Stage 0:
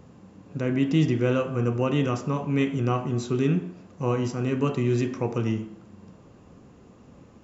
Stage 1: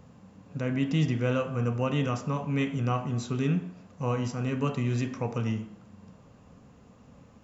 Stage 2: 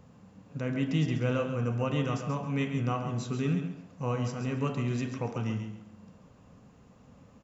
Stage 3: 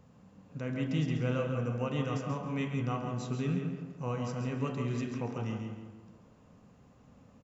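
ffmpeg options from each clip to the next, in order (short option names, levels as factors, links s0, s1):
-af "equalizer=f=350:t=o:w=0.34:g=-12.5,volume=0.794"
-af "aecho=1:1:136|272|408:0.398|0.0955|0.0229,volume=0.75"
-filter_complex "[0:a]asplit=2[s0][s1];[s1]adelay=166,lowpass=f=2300:p=1,volume=0.531,asplit=2[s2][s3];[s3]adelay=166,lowpass=f=2300:p=1,volume=0.44,asplit=2[s4][s5];[s5]adelay=166,lowpass=f=2300:p=1,volume=0.44,asplit=2[s6][s7];[s7]adelay=166,lowpass=f=2300:p=1,volume=0.44,asplit=2[s8][s9];[s9]adelay=166,lowpass=f=2300:p=1,volume=0.44[s10];[s0][s2][s4][s6][s8][s10]amix=inputs=6:normalize=0,volume=0.631"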